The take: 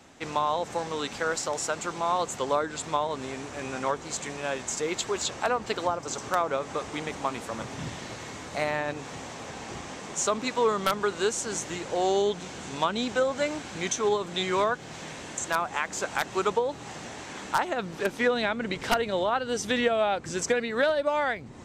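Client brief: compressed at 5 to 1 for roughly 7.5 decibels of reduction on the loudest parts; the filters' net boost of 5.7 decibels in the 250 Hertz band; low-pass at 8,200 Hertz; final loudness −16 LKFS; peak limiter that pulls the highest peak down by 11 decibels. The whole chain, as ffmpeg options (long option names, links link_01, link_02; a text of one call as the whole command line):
ffmpeg -i in.wav -af "lowpass=8200,equalizer=frequency=250:width_type=o:gain=7,acompressor=threshold=-26dB:ratio=5,volume=18dB,alimiter=limit=-6dB:level=0:latency=1" out.wav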